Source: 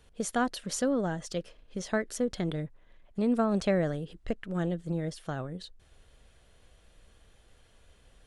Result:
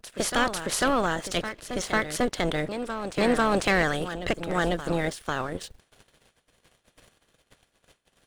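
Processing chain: spectral peaks clipped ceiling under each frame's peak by 21 dB; waveshaping leveller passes 2; expander -51 dBFS; reverse echo 496 ms -9.5 dB; trim -1 dB

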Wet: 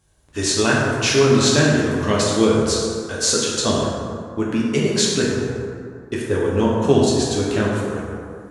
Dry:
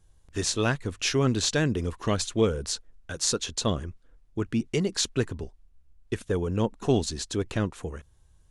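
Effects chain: high-pass 180 Hz 6 dB/octave; plate-style reverb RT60 2.3 s, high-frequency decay 0.45×, DRR -5 dB; trim +4.5 dB

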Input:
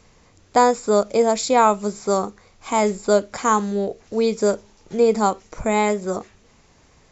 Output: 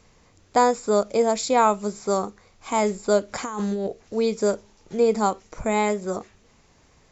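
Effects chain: 3.28–3.87 s: compressor with a negative ratio -24 dBFS, ratio -1; trim -3 dB

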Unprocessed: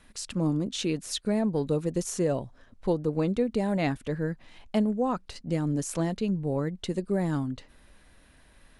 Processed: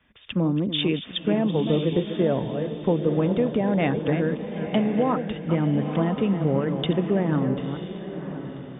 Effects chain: chunks repeated in reverse 222 ms, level -10 dB; high-pass 70 Hz; compression, threshold -27 dBFS, peak gain reduction 7.5 dB; brick-wall FIR low-pass 3.7 kHz; echo that smears into a reverb 995 ms, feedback 43%, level -7 dB; three bands expanded up and down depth 40%; trim +8.5 dB

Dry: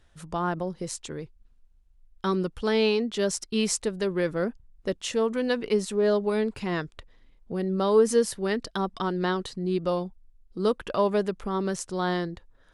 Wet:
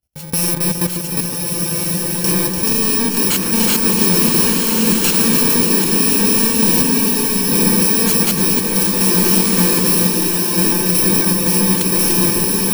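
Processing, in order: bit-reversed sample order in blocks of 64 samples; high-pass 57 Hz 12 dB/octave; peaking EQ 1.2 kHz -5 dB 1.2 oct; in parallel at -1.5 dB: peak limiter -20 dBFS, peak gain reduction 10 dB; on the sum: waveshaping leveller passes 5; level held to a coarse grid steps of 14 dB; on a send: echo whose repeats swap between lows and highs 146 ms, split 2 kHz, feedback 78%, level -5.5 dB; on the sum: swelling reverb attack 1450 ms, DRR -0.5 dB; trim -2.5 dB

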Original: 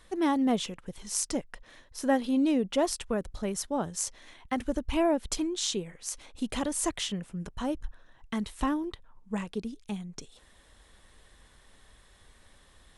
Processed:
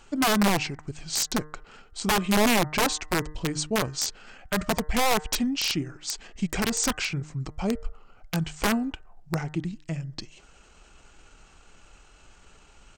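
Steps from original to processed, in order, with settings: integer overflow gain 21 dB; de-hum 197.6 Hz, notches 13; pitch shift -4.5 st; trim +5 dB

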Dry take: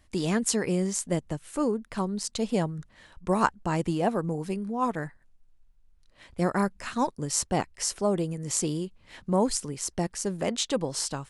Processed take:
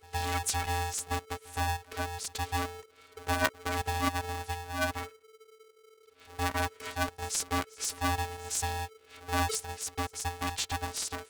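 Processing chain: pre-echo 116 ms -22.5 dB; robot voice 357 Hz; polarity switched at an audio rate 440 Hz; trim -2 dB

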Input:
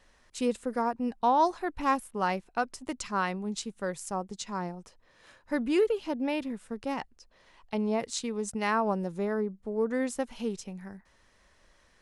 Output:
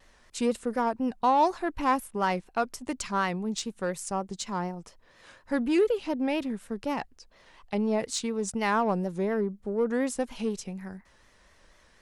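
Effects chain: in parallel at -5.5 dB: saturation -30.5 dBFS, distortion -7 dB; on the sum: vibrato 4.1 Hz 86 cents

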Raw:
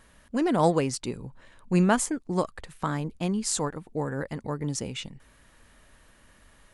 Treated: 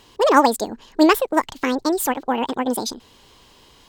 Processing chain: speed mistake 45 rpm record played at 78 rpm; ten-band graphic EQ 250 Hz +9 dB, 500 Hz +6 dB, 1 kHz +10 dB, 4 kHz +11 dB, 8 kHz +8 dB; trim -1 dB

